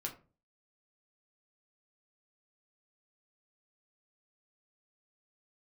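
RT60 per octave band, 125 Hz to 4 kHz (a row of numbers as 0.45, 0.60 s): 0.55, 0.45, 0.40, 0.30, 0.25, 0.20 s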